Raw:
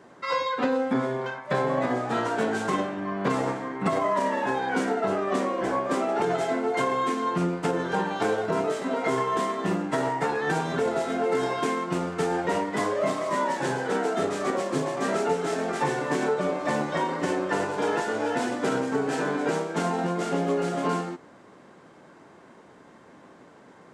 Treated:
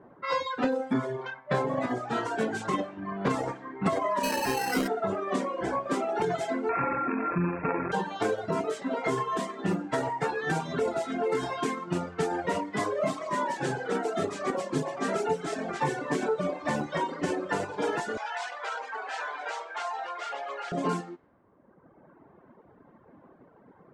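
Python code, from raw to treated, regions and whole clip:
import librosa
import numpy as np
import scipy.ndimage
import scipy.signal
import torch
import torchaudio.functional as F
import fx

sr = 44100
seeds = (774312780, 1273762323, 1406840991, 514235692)

y = fx.chain(x, sr, fx.sample_hold(seeds[0], rate_hz=3500.0, jitter_pct=0),
    fx.env_flatten(amount_pct=50), at=(4.23, 4.88))
y = fx.chain(y, sr, fx.sample_sort(block=32),
    fx.brickwall_lowpass(high_hz=2700.0),
    fx.env_flatten(amount_pct=70), at=(6.69, 7.92))
y = fx.chain(y, sr, fx.highpass(hz=720.0, slope=24),
    fx.env_flatten(amount_pct=50), at=(18.17, 20.72))
y = fx.env_lowpass(y, sr, base_hz=1100.0, full_db=-22.0)
y = fx.dereverb_blind(y, sr, rt60_s=1.5)
y = fx.low_shelf(y, sr, hz=110.0, db=7.0)
y = y * librosa.db_to_amplitude(-1.5)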